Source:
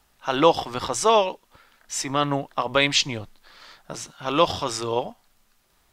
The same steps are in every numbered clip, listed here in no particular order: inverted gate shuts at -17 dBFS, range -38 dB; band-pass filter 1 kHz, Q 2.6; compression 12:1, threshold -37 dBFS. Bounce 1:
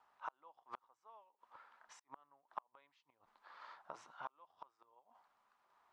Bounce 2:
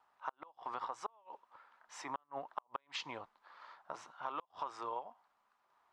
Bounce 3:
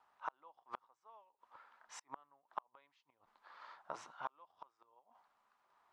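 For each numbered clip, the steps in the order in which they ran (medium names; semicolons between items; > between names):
inverted gate > compression > band-pass filter; band-pass filter > inverted gate > compression; inverted gate > band-pass filter > compression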